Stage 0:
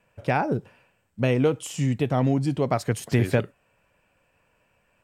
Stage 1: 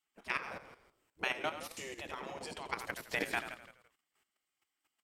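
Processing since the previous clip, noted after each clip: spectral gate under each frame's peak -15 dB weak; frequency-shifting echo 84 ms, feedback 53%, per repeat -39 Hz, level -8 dB; level held to a coarse grid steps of 11 dB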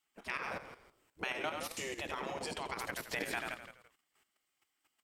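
peak limiter -29 dBFS, peak gain reduction 10 dB; trim +4 dB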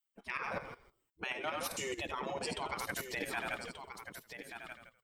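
expander on every frequency bin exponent 1.5; reverse; compression 5:1, threshold -50 dBFS, peak gain reduction 14.5 dB; reverse; delay 1182 ms -9 dB; trim +13.5 dB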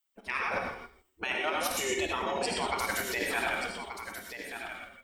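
peaking EQ 140 Hz -12.5 dB 0.61 oct; gated-style reverb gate 140 ms rising, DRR 1.5 dB; trim +5.5 dB

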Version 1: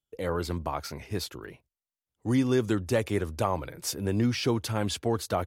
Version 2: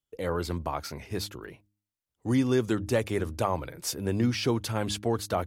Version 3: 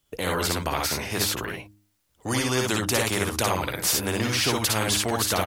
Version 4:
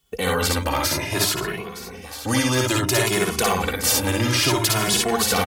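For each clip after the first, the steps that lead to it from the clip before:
de-hum 102.9 Hz, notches 3
on a send: early reflections 55 ms -4.5 dB, 65 ms -5 dB; on the sum: spectrum-flattening compressor 2:1; trim +2.5 dB
echo whose repeats swap between lows and highs 459 ms, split 1 kHz, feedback 64%, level -10 dB; in parallel at -10 dB: integer overflow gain 13 dB; on the sum: endless flanger 2.3 ms +0.59 Hz; trim +4.5 dB

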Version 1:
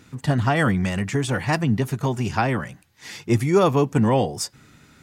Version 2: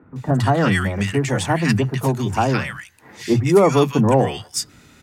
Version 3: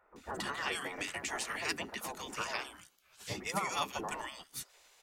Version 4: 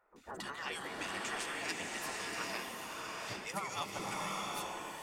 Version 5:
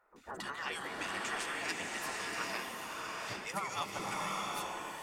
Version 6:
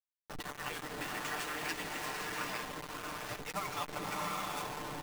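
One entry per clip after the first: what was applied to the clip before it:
three bands offset in time mids, lows, highs 30/160 ms, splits 160/1400 Hz; trim +4.5 dB
band-stop 1.6 kHz, Q 17; spectral gate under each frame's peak -15 dB weak; trim -8 dB
peaking EQ 65 Hz -6 dB 0.94 oct; swelling reverb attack 760 ms, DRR -1.5 dB; trim -5 dB
peaking EQ 1.4 kHz +3 dB 1.4 oct
send-on-delta sampling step -36 dBFS; comb 6.7 ms, depth 47%; trim -1 dB

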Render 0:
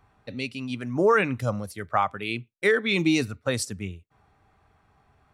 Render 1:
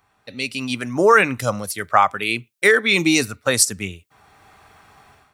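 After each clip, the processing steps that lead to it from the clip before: tilt EQ +2.5 dB/octave; level rider gain up to 15 dB; dynamic bell 3.3 kHz, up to -5 dB, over -29 dBFS, Q 1.5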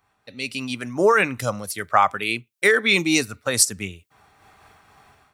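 random flutter of the level, depth 60%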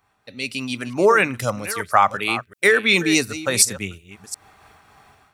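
chunks repeated in reverse 362 ms, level -14 dB; trim +1.5 dB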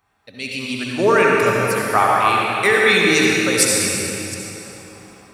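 reverberation RT60 3.3 s, pre-delay 59 ms, DRR -3.5 dB; trim -1.5 dB

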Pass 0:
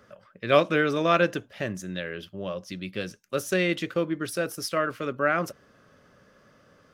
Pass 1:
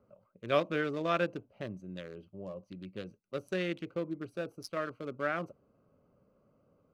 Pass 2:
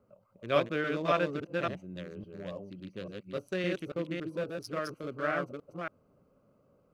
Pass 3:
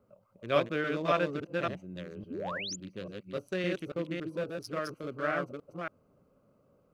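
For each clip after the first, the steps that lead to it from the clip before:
local Wiener filter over 25 samples; trim -8.5 dB
chunks repeated in reverse 280 ms, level -2 dB
painted sound rise, 2.30–2.76 s, 220–7500 Hz -38 dBFS

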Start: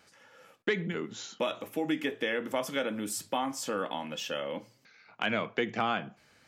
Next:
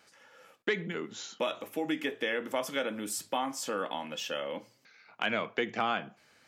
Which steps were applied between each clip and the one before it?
bass shelf 160 Hz -9.5 dB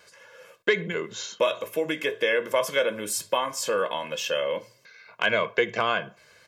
comb 1.9 ms, depth 74%; trim +5.5 dB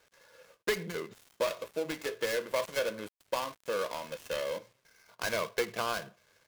dead-time distortion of 0.16 ms; trim -7 dB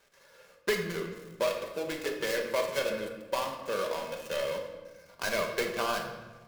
simulated room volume 920 m³, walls mixed, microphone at 1.2 m

